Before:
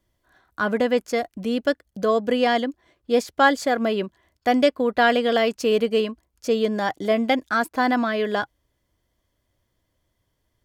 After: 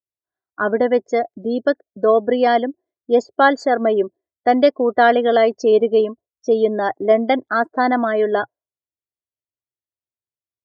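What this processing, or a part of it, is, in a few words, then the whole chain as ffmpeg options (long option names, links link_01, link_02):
car door speaker: -af "highpass=80,equalizer=frequency=120:width_type=q:width=4:gain=4,equalizer=frequency=180:width_type=q:width=4:gain=-8,equalizer=frequency=390:width_type=q:width=4:gain=7,equalizer=frequency=670:width_type=q:width=4:gain=5,equalizer=frequency=2700:width_type=q:width=4:gain=-9,lowpass=frequency=7600:width=0.5412,lowpass=frequency=7600:width=1.3066,afftdn=noise_reduction=35:noise_floor=-32,volume=2.5dB"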